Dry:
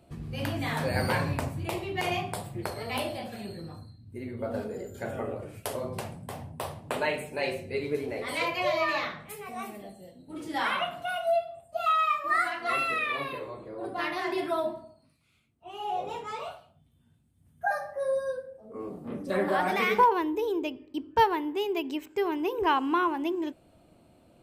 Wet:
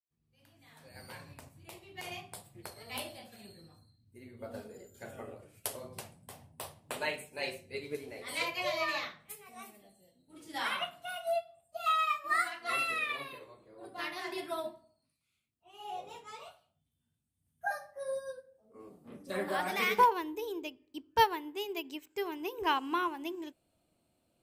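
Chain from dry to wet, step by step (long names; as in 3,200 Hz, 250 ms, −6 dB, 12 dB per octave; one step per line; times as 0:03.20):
fade in at the beginning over 3.51 s
high-shelf EQ 2,800 Hz +11.5 dB
expander for the loud parts 1.5 to 1, over −43 dBFS
level −4 dB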